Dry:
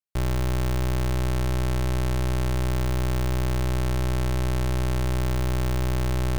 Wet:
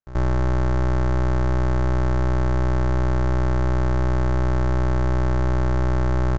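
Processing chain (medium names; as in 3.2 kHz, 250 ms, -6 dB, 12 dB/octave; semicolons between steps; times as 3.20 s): resonant high shelf 2 kHz -9 dB, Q 1.5; reverse echo 83 ms -16 dB; resampled via 16 kHz; trim +4 dB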